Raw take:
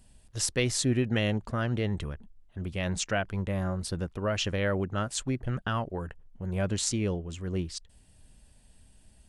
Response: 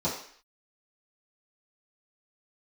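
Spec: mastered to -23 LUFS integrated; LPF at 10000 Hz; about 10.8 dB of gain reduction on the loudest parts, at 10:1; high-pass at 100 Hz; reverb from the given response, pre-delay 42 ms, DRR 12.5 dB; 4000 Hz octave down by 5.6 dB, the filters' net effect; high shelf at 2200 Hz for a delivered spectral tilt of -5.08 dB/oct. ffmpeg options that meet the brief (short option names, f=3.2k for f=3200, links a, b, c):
-filter_complex "[0:a]highpass=100,lowpass=10k,highshelf=f=2.2k:g=-4,equalizer=f=4k:t=o:g=-3.5,acompressor=threshold=-34dB:ratio=10,asplit=2[a][b];[1:a]atrim=start_sample=2205,adelay=42[c];[b][c]afir=irnorm=-1:irlink=0,volume=-21.5dB[d];[a][d]amix=inputs=2:normalize=0,volume=16dB"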